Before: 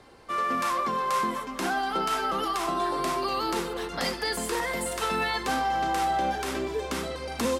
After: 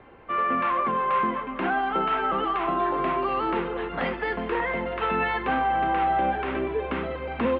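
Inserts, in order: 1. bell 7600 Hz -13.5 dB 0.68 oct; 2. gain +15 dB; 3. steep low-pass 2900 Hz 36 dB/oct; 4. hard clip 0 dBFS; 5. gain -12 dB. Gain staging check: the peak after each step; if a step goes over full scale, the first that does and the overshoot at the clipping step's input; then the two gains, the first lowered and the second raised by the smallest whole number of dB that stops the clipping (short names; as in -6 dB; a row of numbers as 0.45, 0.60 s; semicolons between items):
-18.0, -3.0, -2.5, -2.5, -14.5 dBFS; no overload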